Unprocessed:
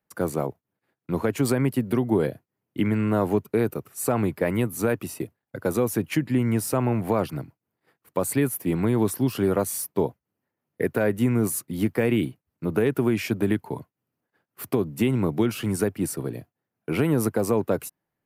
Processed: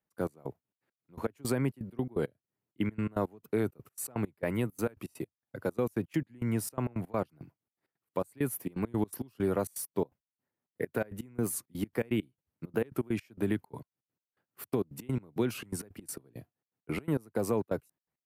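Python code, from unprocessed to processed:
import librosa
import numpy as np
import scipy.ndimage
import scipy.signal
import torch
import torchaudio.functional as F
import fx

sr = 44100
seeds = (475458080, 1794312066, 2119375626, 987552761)

y = fx.step_gate(x, sr, bpm=166, pattern='x.x..xxx.x.', floor_db=-24.0, edge_ms=4.5)
y = fx.record_warp(y, sr, rpm=45.0, depth_cents=100.0)
y = y * 10.0 ** (-7.0 / 20.0)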